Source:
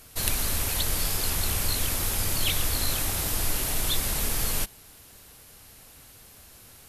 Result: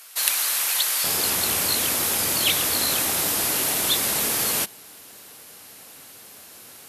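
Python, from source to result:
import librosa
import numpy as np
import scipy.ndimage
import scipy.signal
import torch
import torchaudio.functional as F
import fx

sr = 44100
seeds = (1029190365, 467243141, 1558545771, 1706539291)

y = fx.highpass(x, sr, hz=fx.steps((0.0, 990.0), (1.04, 220.0)), slope=12)
y = F.gain(torch.from_numpy(y), 6.5).numpy()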